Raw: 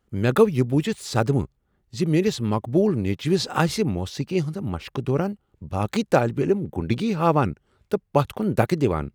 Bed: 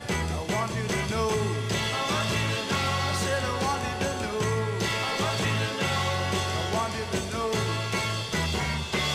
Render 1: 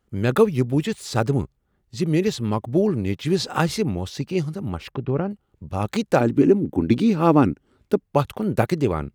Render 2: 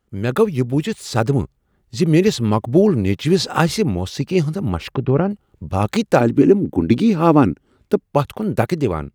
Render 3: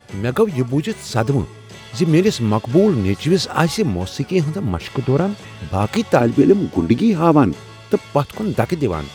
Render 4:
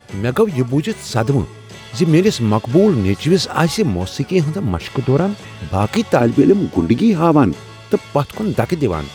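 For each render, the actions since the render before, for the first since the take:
4.91–5.31 s: distance through air 340 m; 6.20–8.06 s: peaking EQ 280 Hz +12 dB 0.65 oct
level rider gain up to 8 dB
add bed -10.5 dB
trim +2 dB; peak limiter -2 dBFS, peak gain reduction 3 dB

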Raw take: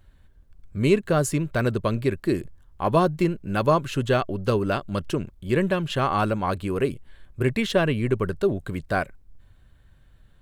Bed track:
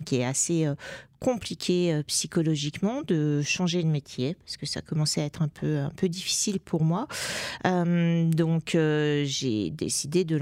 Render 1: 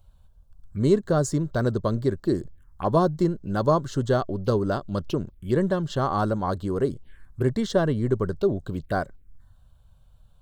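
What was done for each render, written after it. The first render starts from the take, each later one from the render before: touch-sensitive phaser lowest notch 290 Hz, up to 2.5 kHz, full sweep at -24 dBFS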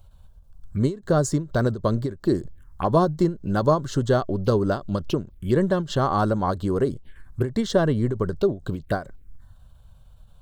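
in parallel at 0 dB: compression, threshold -30 dBFS, peak gain reduction 15 dB; on the sum: endings held to a fixed fall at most 190 dB/s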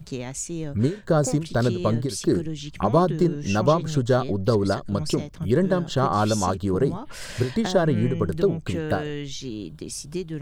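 add bed track -6 dB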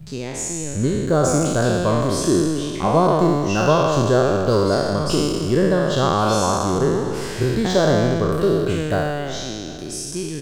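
spectral sustain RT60 1.99 s; delay 756 ms -21 dB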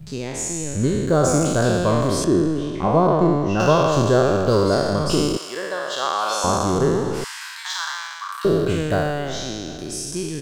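2.24–3.60 s: low-pass 1.6 kHz 6 dB/octave; 5.37–6.44 s: high-pass 820 Hz; 7.24–8.45 s: steep high-pass 910 Hz 72 dB/octave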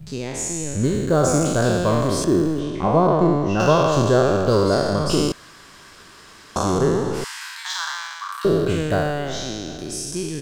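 0.85–2.60 s: companding laws mixed up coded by A; 5.32–6.56 s: room tone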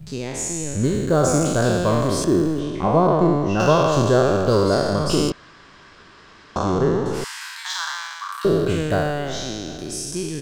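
5.30–7.06 s: distance through air 140 m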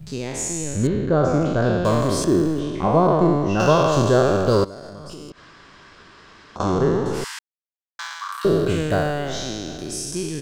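0.87–1.85 s: distance through air 240 m; 4.64–6.60 s: compression 16:1, threshold -32 dBFS; 7.39–7.99 s: mute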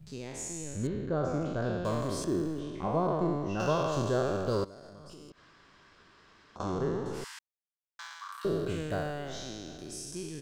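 trim -12.5 dB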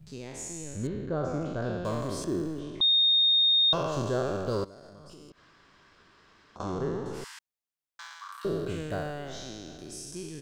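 2.81–3.73 s: bleep 3.69 kHz -19 dBFS

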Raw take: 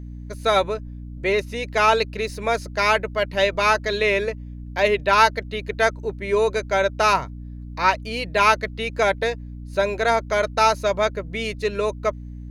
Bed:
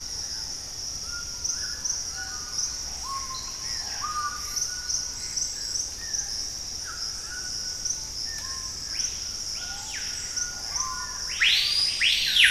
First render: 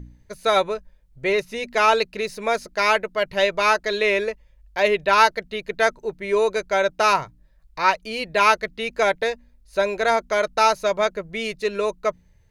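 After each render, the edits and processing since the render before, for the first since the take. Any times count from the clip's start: de-hum 60 Hz, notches 5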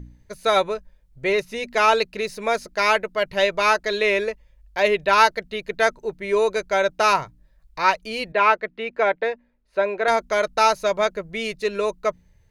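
8.32–10.08 s: three-band isolator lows -16 dB, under 190 Hz, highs -20 dB, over 3 kHz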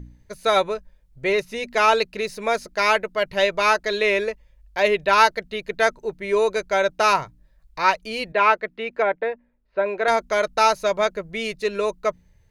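9.02–9.86 s: distance through air 320 m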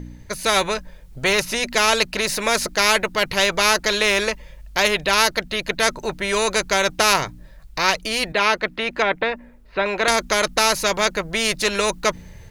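level rider gain up to 7.5 dB; spectrum-flattening compressor 2:1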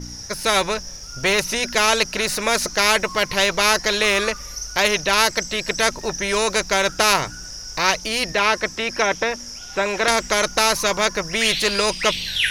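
add bed -3 dB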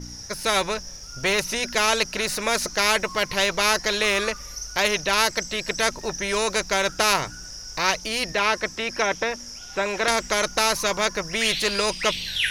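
trim -3.5 dB

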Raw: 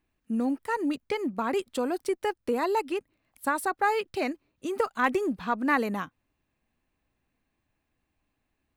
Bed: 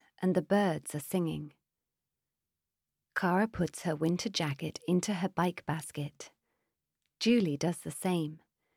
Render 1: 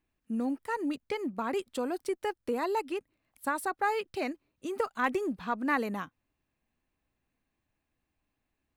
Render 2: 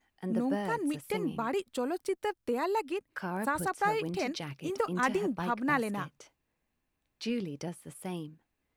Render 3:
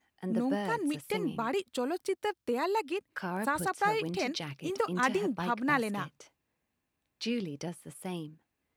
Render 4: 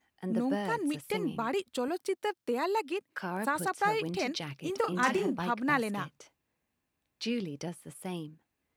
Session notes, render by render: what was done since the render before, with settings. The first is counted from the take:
trim -4 dB
add bed -7 dB
high-pass 64 Hz; dynamic bell 3.8 kHz, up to +4 dB, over -51 dBFS, Q 0.93
1.88–3.68 s: high-pass 140 Hz; 4.80–5.39 s: doubling 37 ms -6.5 dB

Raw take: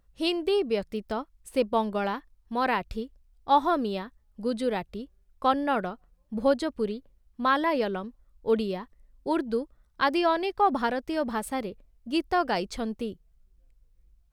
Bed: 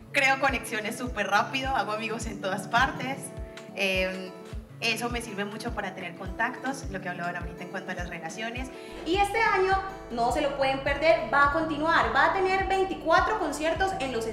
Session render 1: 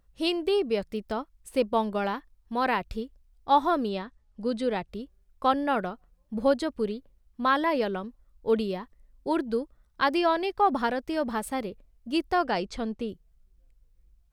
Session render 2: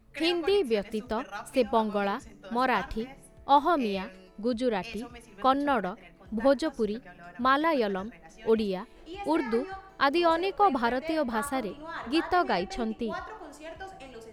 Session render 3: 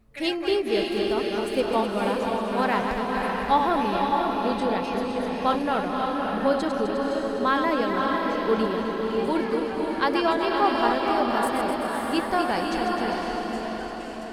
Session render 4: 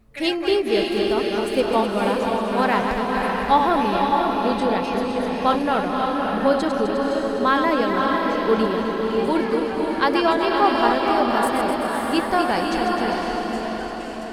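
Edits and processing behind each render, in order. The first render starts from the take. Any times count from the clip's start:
3.89–4.88 s: low-pass 7.9 kHz; 12.45–13.09 s: distance through air 51 m
add bed -15.5 dB
backward echo that repeats 128 ms, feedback 77%, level -6.5 dB; echo that smears into a reverb 567 ms, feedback 46%, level -3 dB
trim +4 dB

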